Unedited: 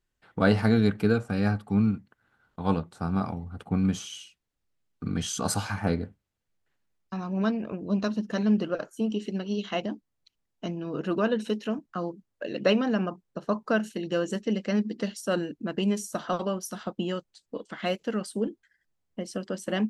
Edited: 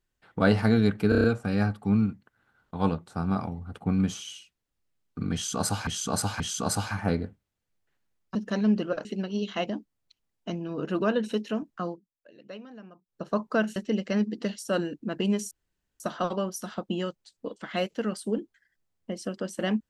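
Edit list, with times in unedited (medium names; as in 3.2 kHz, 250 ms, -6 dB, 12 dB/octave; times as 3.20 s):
1.09 s: stutter 0.03 s, 6 plays
5.19–5.72 s: loop, 3 plays
7.14–8.17 s: delete
8.87–9.21 s: delete
12.01–13.39 s: dip -20 dB, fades 0.17 s
13.92–14.34 s: delete
16.09 s: insert room tone 0.49 s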